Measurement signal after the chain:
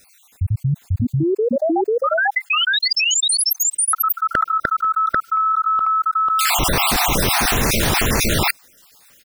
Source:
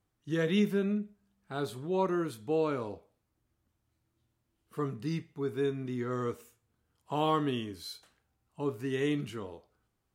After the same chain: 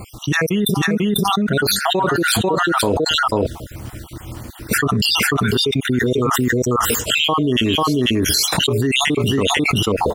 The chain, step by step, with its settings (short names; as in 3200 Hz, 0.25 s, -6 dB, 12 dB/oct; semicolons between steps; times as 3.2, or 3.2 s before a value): random spectral dropouts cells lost 58%; on a send: echo 0.493 s -3 dB; on the sum: fast leveller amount 100%; gain +6.5 dB